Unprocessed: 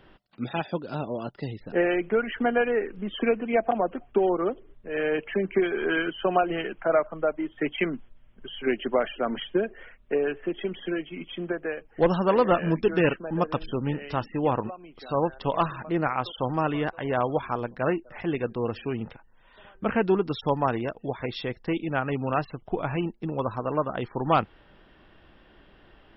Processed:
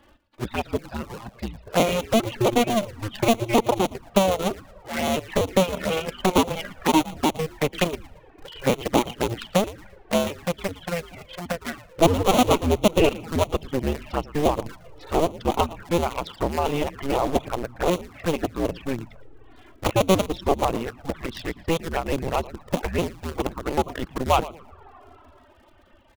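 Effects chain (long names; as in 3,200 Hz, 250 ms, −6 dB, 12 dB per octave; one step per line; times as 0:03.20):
sub-harmonics by changed cycles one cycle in 2, inverted
comb and all-pass reverb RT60 4.4 s, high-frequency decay 0.4×, pre-delay 120 ms, DRR 15.5 dB
reverb reduction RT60 0.94 s
on a send: echo with shifted repeats 114 ms, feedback 33%, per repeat −120 Hz, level −14.5 dB
on the sum: flanger swept by the level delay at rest 3.7 ms, full sweep at −24 dBFS
in parallel at −4.5 dB: centre clipping without the shift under −28 dBFS
on the sum: level +2 dB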